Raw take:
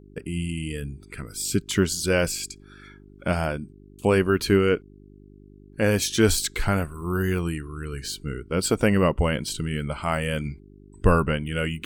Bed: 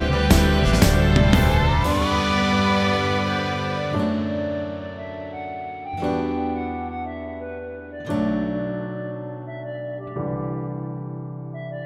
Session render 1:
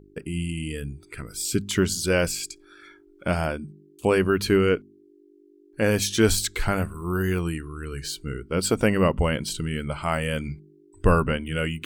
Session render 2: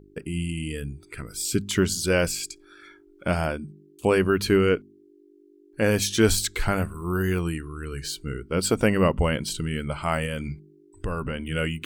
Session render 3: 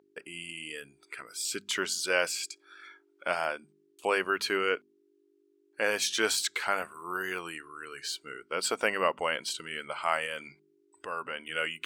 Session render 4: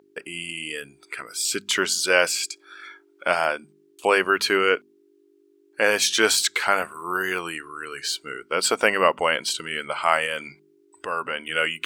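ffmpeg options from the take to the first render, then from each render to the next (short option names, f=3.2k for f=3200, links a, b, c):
-af "bandreject=f=50:t=h:w=4,bandreject=f=100:t=h:w=4,bandreject=f=150:t=h:w=4,bandreject=f=200:t=h:w=4,bandreject=f=250:t=h:w=4"
-filter_complex "[0:a]asettb=1/sr,asplit=3[a][b][c];[a]atrim=end=10.254[d];[b]atrim=start=10.25:end=11.5,asetpts=PTS-STARTPTS,afade=t=in:d=0.004:c=qsin,afade=t=out:st=1.246:d=0.004:c=qsin,acompressor=threshold=-25dB:ratio=6:attack=3.2:release=140:knee=1:detection=peak[e];[c]atrim=start=11.496[f];[d][e]acrossfade=d=0.004:c1=hsin:c2=qsin[g];[g][f]acrossfade=d=0.004:c1=qsin:c2=hsin"
-af "highpass=720,highshelf=f=8.2k:g=-10.5"
-af "volume=8.5dB"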